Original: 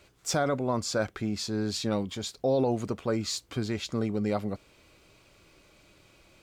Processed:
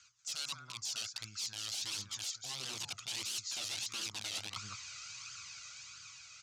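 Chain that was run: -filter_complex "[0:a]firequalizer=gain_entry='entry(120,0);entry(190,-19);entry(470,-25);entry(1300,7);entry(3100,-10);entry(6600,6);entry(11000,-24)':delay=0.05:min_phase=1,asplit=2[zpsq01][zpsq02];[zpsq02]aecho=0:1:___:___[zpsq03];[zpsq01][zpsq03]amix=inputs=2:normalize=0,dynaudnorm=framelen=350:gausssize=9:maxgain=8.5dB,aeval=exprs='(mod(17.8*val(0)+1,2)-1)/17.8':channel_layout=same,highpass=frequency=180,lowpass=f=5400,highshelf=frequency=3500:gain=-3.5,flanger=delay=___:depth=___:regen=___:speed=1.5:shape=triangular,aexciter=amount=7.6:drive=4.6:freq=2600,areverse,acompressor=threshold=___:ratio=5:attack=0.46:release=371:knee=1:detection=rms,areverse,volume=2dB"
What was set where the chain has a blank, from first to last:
193, 0.251, 0.6, 1, 27, -36dB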